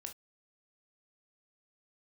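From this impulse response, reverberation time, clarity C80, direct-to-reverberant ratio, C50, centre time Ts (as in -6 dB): not exponential, 60.0 dB, 4.0 dB, 12.5 dB, 11 ms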